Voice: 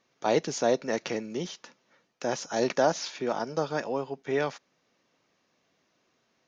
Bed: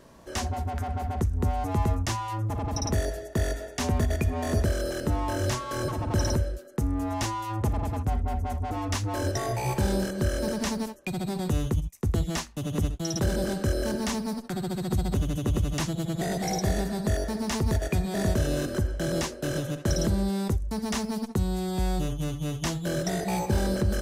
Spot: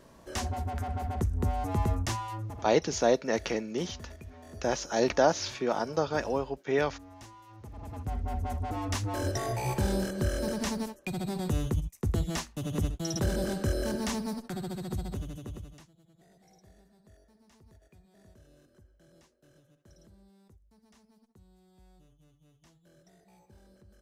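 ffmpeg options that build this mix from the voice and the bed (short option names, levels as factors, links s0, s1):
-filter_complex "[0:a]adelay=2400,volume=1.06[s0];[1:a]volume=5.31,afade=t=out:st=2.15:d=0.57:silence=0.133352,afade=t=in:st=7.69:d=0.76:silence=0.133352,afade=t=out:st=14.23:d=1.65:silence=0.0316228[s1];[s0][s1]amix=inputs=2:normalize=0"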